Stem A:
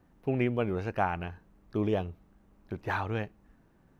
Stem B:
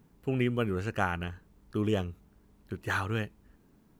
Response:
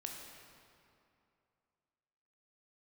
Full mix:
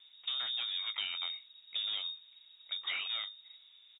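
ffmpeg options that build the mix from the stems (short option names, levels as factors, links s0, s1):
-filter_complex "[0:a]flanger=delay=20:depth=7.5:speed=1,volume=0.668[s0];[1:a]bandreject=f=50:t=h:w=6,bandreject=f=100:t=h:w=6,bandreject=f=150:t=h:w=6,bandreject=f=200:t=h:w=6,bandreject=f=250:t=h:w=6,asoftclip=type=hard:threshold=0.0335,adelay=0.9,volume=1.26[s1];[s0][s1]amix=inputs=2:normalize=0,lowpass=f=3200:t=q:w=0.5098,lowpass=f=3200:t=q:w=0.6013,lowpass=f=3200:t=q:w=0.9,lowpass=f=3200:t=q:w=2.563,afreqshift=-3800,acompressor=threshold=0.02:ratio=6"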